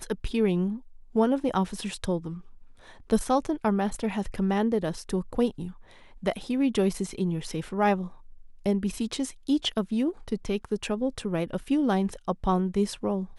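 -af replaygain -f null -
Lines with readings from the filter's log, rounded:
track_gain = +7.6 dB
track_peak = 0.198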